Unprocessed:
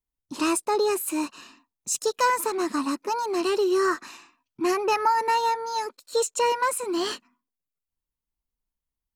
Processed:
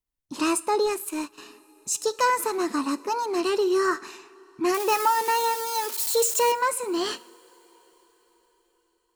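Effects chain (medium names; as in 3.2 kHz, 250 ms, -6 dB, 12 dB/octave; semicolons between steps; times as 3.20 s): 4.74–6.52 s: zero-crossing glitches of -21.5 dBFS; two-slope reverb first 0.48 s, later 4.9 s, from -18 dB, DRR 15.5 dB; 0.86–1.38 s: power-law waveshaper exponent 1.4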